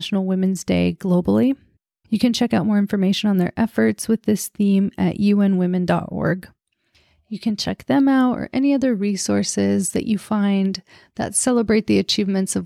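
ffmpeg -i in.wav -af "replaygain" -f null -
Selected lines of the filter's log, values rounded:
track_gain = +0.3 dB
track_peak = 0.458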